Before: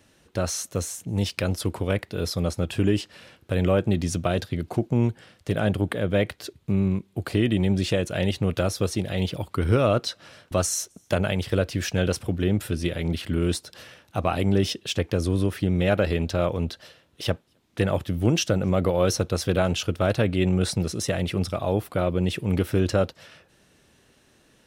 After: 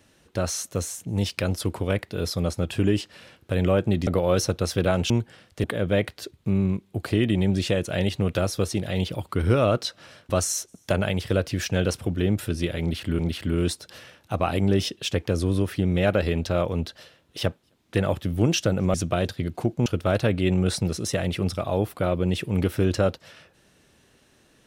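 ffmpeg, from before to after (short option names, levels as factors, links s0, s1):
-filter_complex "[0:a]asplit=7[s0][s1][s2][s3][s4][s5][s6];[s0]atrim=end=4.072[s7];[s1]atrim=start=18.778:end=19.812[s8];[s2]atrim=start=4.988:end=5.532[s9];[s3]atrim=start=5.858:end=13.412[s10];[s4]atrim=start=13.028:end=18.782[s11];[s5]atrim=start=4.068:end=4.992[s12];[s6]atrim=start=19.808[s13];[s7][s8]acrossfade=d=0.004:c1=hsin:c2=hsin[s14];[s14][s9]acrossfade=d=0.004:c1=hsin:c2=hsin[s15];[s15][s10]acrossfade=d=0.004:c1=hsin:c2=hsin[s16];[s16][s11]acrossfade=d=0.004:c1=hsin:c2=hsin[s17];[s17][s12]acrossfade=d=0.004:c1=hsin:c2=hsin[s18];[s18][s13]acrossfade=d=0.004:c1=hsin:c2=hsin"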